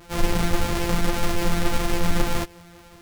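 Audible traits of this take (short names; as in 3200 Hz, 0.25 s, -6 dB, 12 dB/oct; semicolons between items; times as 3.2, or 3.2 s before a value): a buzz of ramps at a fixed pitch in blocks of 256 samples; a shimmering, thickened sound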